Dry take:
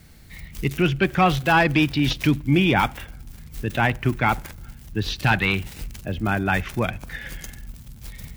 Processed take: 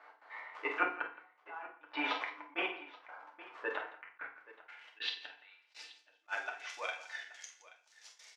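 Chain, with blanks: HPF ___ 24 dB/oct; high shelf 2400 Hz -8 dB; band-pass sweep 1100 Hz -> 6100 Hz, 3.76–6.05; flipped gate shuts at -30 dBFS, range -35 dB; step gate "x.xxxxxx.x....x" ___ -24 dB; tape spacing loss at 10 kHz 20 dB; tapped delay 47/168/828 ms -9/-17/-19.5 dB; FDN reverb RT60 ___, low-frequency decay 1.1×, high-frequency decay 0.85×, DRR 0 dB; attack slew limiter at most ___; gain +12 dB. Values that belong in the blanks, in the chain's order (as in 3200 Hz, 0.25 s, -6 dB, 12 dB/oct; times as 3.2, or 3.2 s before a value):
510 Hz, 141 bpm, 0.42 s, 530 dB/s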